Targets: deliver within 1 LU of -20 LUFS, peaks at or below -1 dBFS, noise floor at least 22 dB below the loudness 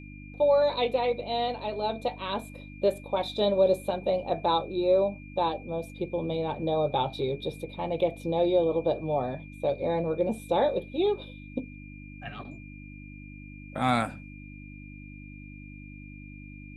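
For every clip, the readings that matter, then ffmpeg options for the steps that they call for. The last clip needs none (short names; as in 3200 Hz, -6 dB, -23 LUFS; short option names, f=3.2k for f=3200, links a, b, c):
hum 50 Hz; harmonics up to 300 Hz; hum level -42 dBFS; steady tone 2400 Hz; tone level -50 dBFS; loudness -28.0 LUFS; peak -10.5 dBFS; loudness target -20.0 LUFS
-> -af "bandreject=f=50:t=h:w=4,bandreject=f=100:t=h:w=4,bandreject=f=150:t=h:w=4,bandreject=f=200:t=h:w=4,bandreject=f=250:t=h:w=4,bandreject=f=300:t=h:w=4"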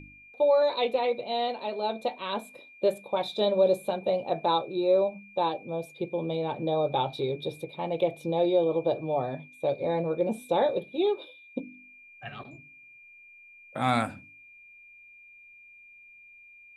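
hum none; steady tone 2400 Hz; tone level -50 dBFS
-> -af "bandreject=f=2.4k:w=30"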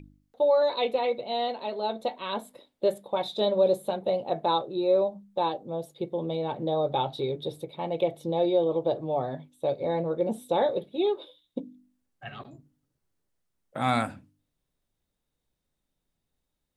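steady tone none; loudness -28.0 LUFS; peak -10.5 dBFS; loudness target -20.0 LUFS
-> -af "volume=8dB"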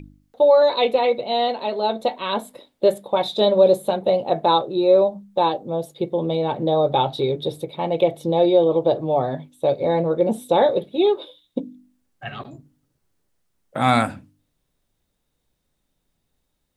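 loudness -20.0 LUFS; peak -2.5 dBFS; noise floor -74 dBFS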